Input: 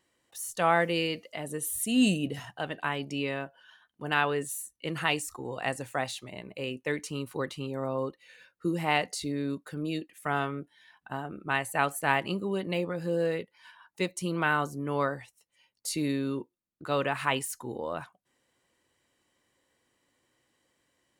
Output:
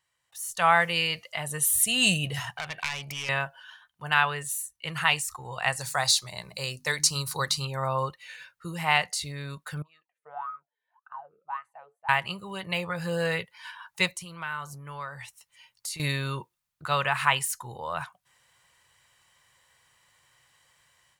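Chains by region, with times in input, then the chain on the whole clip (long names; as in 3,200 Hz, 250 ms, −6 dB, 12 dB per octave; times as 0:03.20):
0:02.56–0:03.29: phase distortion by the signal itself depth 0.37 ms + parametric band 2,300 Hz +9 dB 0.21 octaves + downward compressor 2.5 to 1, threshold −41 dBFS
0:05.79–0:07.65: high shelf with overshoot 3,600 Hz +7.5 dB, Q 3 + mains-hum notches 50/100/150/200/250/300 Hz
0:09.82–0:12.09: parametric band 440 Hz −3 dB 2.2 octaves + LFO wah 1.8 Hz 430–1,300 Hz, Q 20
0:14.15–0:16.00: notch filter 740 Hz, Q 13 + downward compressor 2.5 to 1, threshold −48 dBFS
whole clip: drawn EQ curve 150 Hz 0 dB, 270 Hz −20 dB, 950 Hz +3 dB; automatic gain control gain up to 14 dB; level −6 dB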